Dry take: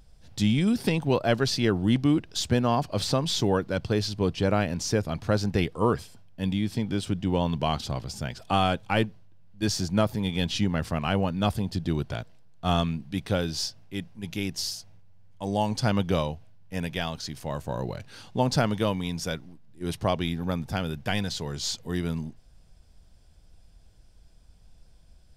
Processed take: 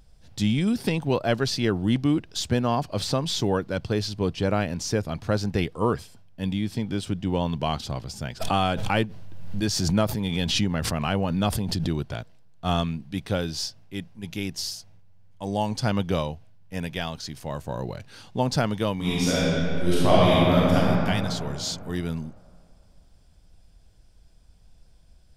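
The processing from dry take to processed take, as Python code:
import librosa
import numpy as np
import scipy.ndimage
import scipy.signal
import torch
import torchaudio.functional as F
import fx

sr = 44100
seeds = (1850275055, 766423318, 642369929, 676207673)

y = fx.pre_swell(x, sr, db_per_s=29.0, at=(8.4, 11.88), fade=0.02)
y = fx.reverb_throw(y, sr, start_s=18.96, length_s=1.8, rt60_s=2.8, drr_db=-10.0)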